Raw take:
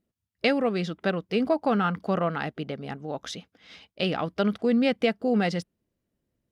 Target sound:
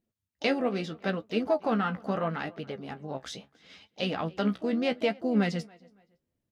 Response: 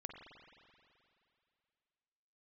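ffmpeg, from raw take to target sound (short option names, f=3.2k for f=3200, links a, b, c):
-filter_complex "[0:a]asplit=2[a][b];[b]adelay=280,lowpass=f=3.7k:p=1,volume=-24dB,asplit=2[c][d];[d]adelay=280,lowpass=f=3.7k:p=1,volume=0.31[e];[a][c][e]amix=inputs=3:normalize=0,flanger=delay=8.2:depth=8.2:regen=41:speed=0.76:shape=triangular,asplit=2[f][g];[g]asetrate=58866,aresample=44100,atempo=0.749154,volume=-14dB[h];[f][h]amix=inputs=2:normalize=0"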